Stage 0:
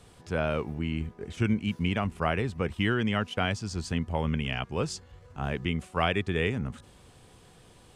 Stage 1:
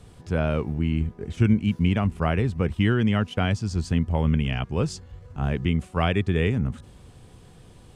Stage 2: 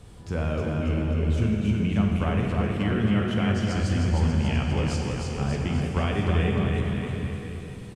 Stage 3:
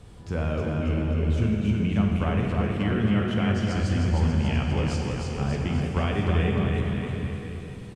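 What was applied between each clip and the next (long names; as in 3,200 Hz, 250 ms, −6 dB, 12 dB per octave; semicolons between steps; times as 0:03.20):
low-shelf EQ 310 Hz +9.5 dB
downward compressor 4 to 1, threshold −25 dBFS, peak gain reduction 9.5 dB; on a send: bouncing-ball delay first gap 310 ms, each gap 0.9×, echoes 5; on the sum: dense smooth reverb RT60 2.5 s, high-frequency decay 0.95×, DRR 1 dB
high-shelf EQ 8,000 Hz −6 dB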